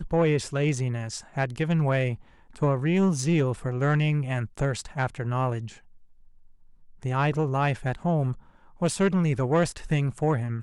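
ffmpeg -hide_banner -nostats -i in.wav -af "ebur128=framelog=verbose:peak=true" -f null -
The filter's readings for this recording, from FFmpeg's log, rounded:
Integrated loudness:
  I:         -26.2 LUFS
  Threshold: -36.8 LUFS
Loudness range:
  LRA:         4.1 LU
  Threshold: -47.1 LUFS
  LRA low:   -29.7 LUFS
  LRA high:  -25.5 LUFS
True peak:
  Peak:      -14.6 dBFS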